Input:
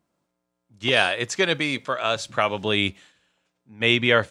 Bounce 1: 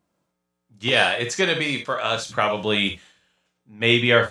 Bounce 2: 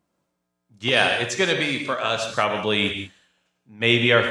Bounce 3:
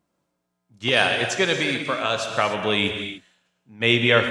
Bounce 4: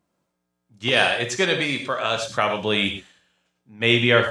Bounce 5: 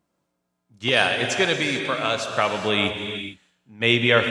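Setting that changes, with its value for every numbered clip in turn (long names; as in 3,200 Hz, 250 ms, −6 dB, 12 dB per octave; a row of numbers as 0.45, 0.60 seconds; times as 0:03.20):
reverb whose tail is shaped and stops, gate: 90, 210, 320, 140, 480 milliseconds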